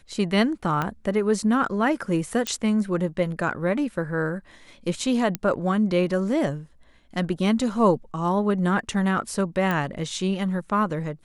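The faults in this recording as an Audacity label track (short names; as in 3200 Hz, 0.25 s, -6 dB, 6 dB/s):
0.820000	0.820000	pop -13 dBFS
2.470000	2.470000	pop -10 dBFS
5.350000	5.350000	pop -10 dBFS
9.710000	9.710000	pop -13 dBFS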